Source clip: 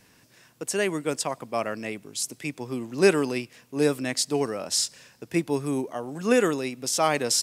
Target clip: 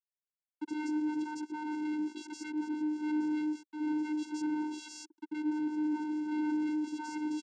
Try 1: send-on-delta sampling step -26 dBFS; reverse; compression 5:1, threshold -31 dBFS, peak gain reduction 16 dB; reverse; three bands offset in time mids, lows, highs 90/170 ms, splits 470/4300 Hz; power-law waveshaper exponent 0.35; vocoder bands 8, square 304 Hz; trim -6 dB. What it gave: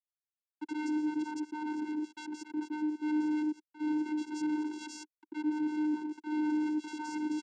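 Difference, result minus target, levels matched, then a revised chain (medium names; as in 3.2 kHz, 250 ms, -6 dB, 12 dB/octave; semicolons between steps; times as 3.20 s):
send-on-delta sampling: distortion +11 dB
send-on-delta sampling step -37 dBFS; reverse; compression 5:1, threshold -31 dBFS, peak gain reduction 16 dB; reverse; three bands offset in time mids, lows, highs 90/170 ms, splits 470/4300 Hz; power-law waveshaper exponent 0.35; vocoder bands 8, square 304 Hz; trim -6 dB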